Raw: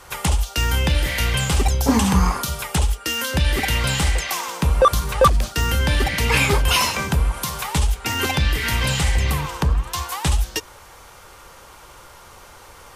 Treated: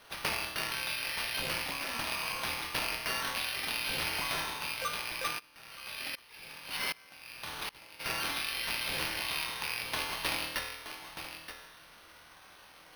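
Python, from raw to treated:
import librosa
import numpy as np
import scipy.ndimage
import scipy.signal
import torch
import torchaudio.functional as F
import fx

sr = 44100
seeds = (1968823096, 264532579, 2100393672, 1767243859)

y = fx.rattle_buzz(x, sr, strikes_db=-25.0, level_db=-10.0)
y = fx.comb_fb(y, sr, f0_hz=120.0, decay_s=1.1, harmonics='all', damping=0.0, mix_pct=90)
y = fx.rider(y, sr, range_db=10, speed_s=0.5)
y = fx.weighting(y, sr, curve='ITU-R 468')
y = y + 10.0 ** (-10.0 / 20.0) * np.pad(y, (int(924 * sr / 1000.0), 0))[:len(y)]
y = np.repeat(y[::6], 6)[:len(y)]
y = fx.hum_notches(y, sr, base_hz=50, count=8)
y = fx.tremolo_decay(y, sr, direction='swelling', hz=1.3, depth_db=24, at=(5.38, 7.99), fade=0.02)
y = y * 10.0 ** (-4.5 / 20.0)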